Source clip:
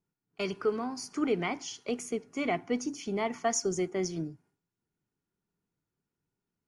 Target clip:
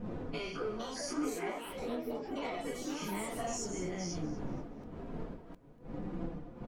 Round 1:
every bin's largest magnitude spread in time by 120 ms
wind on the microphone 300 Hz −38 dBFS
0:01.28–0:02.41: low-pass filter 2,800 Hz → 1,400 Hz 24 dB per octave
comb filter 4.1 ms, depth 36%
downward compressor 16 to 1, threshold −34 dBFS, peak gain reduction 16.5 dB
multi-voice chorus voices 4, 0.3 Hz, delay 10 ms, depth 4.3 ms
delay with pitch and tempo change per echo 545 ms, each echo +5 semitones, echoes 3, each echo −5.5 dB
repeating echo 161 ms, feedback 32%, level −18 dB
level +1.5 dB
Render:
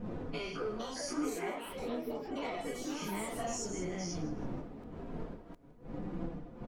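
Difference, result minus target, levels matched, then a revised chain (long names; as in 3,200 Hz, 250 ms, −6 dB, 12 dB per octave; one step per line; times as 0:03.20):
echo 76 ms early
every bin's largest magnitude spread in time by 120 ms
wind on the microphone 300 Hz −38 dBFS
0:01.28–0:02.41: low-pass filter 2,800 Hz → 1,400 Hz 24 dB per octave
comb filter 4.1 ms, depth 36%
downward compressor 16 to 1, threshold −34 dBFS, peak gain reduction 16.5 dB
multi-voice chorus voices 4, 0.3 Hz, delay 10 ms, depth 4.3 ms
delay with pitch and tempo change per echo 545 ms, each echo +5 semitones, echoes 3, each echo −5.5 dB
repeating echo 237 ms, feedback 32%, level −18 dB
level +1.5 dB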